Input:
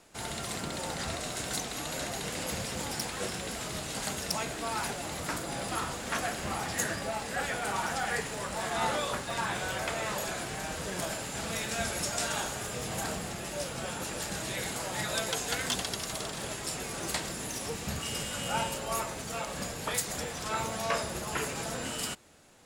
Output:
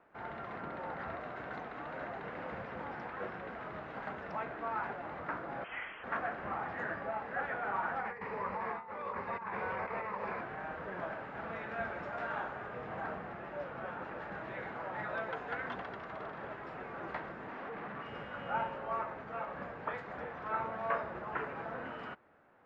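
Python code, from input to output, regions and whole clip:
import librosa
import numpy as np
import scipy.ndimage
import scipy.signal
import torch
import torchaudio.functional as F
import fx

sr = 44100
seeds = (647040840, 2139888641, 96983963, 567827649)

y = fx.chain(x, sr, fx.highpass(hz=51.0, slope=12),
    fx.freq_invert(carrier_hz=3300), at=(5.64, 6.04))
y = fx.chain(y, sr, fx.ripple_eq(per_octave=0.87, db=9),
    fx.over_compress(threshold_db=-34.0, ratio=-0.5), at=(7.99, 10.41))
y = fx.chain(y, sr, fx.highpass(hz=140.0, slope=24),
    fx.schmitt(flips_db=-44.0),
    fx.resample_linear(factor=3), at=(17.48, 18.06))
y = scipy.signal.sosfilt(scipy.signal.butter(4, 1600.0, 'lowpass', fs=sr, output='sos'), y)
y = fx.tilt_eq(y, sr, slope=3.0)
y = y * 10.0 ** (-1.5 / 20.0)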